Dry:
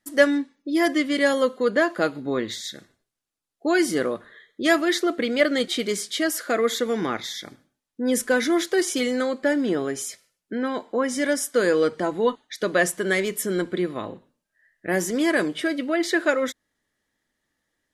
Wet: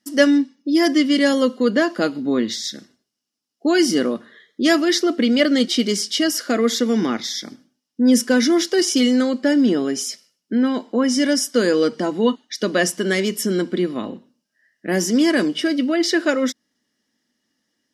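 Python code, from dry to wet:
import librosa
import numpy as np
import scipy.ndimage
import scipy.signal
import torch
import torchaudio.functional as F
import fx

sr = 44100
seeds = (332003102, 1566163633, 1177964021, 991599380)

y = fx.highpass(x, sr, hz=170.0, slope=6)
y = fx.peak_eq(y, sr, hz=5300.0, db=13.5, octaves=0.48)
y = fx.small_body(y, sr, hz=(230.0, 2900.0), ring_ms=30, db=13)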